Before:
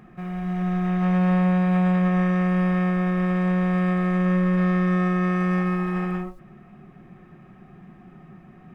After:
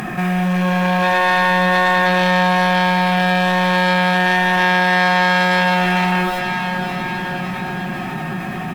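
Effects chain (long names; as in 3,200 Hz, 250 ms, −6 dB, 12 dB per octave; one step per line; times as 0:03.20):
parametric band 310 Hz +2.5 dB 2.1 octaves
sine wavefolder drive 10 dB, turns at −11.5 dBFS
spectral tilt +3 dB per octave
comb filter 1.2 ms, depth 34%
feedback delay with all-pass diffusion 542 ms, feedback 56%, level −11.5 dB
envelope flattener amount 50%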